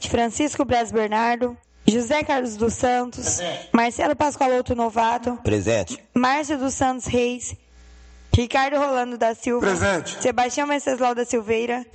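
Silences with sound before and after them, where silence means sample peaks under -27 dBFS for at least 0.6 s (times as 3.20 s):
7.54–8.33 s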